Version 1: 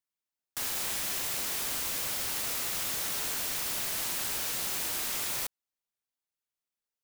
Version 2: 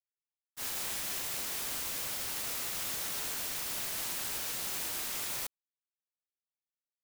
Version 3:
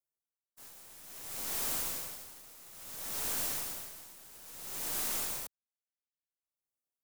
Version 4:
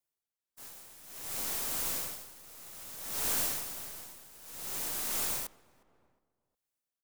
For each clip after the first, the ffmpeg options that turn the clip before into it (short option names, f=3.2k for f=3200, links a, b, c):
-af "agate=range=-33dB:threshold=-26dB:ratio=3:detection=peak,volume=3.5dB"
-filter_complex "[0:a]acrossover=split=130|1300|5800[a][b][c][d];[c]acrusher=bits=5:dc=4:mix=0:aa=0.000001[e];[a][b][e][d]amix=inputs=4:normalize=0,aeval=exprs='val(0)*pow(10,-20*(0.5-0.5*cos(2*PI*0.59*n/s))/20)':c=same,volume=3.5dB"
-filter_complex "[0:a]asplit=2[a][b];[b]adelay=360,lowpass=f=1.3k:p=1,volume=-18dB,asplit=2[c][d];[d]adelay=360,lowpass=f=1.3k:p=1,volume=0.39,asplit=2[e][f];[f]adelay=360,lowpass=f=1.3k:p=1,volume=0.39[g];[a][c][e][g]amix=inputs=4:normalize=0,tremolo=f=1.5:d=0.45,volume=4dB"